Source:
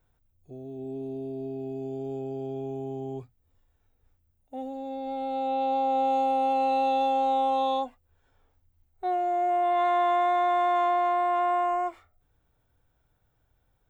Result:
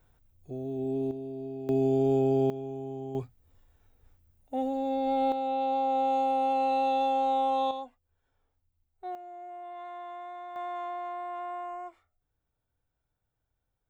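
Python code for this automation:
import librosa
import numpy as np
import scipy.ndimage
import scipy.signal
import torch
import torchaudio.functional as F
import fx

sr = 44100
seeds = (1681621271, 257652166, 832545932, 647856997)

y = fx.gain(x, sr, db=fx.steps((0.0, 5.0), (1.11, -3.0), (1.69, 9.5), (2.5, -3.0), (3.15, 5.5), (5.32, -2.0), (7.71, -9.5), (9.15, -18.0), (10.56, -12.0)))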